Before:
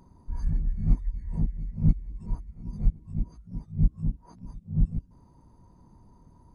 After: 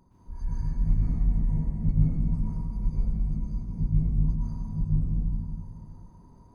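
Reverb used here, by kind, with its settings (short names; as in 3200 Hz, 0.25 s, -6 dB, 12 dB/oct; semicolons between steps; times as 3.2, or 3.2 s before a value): plate-style reverb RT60 2.4 s, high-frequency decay 0.8×, pre-delay 0.105 s, DRR -8 dB; gain -6.5 dB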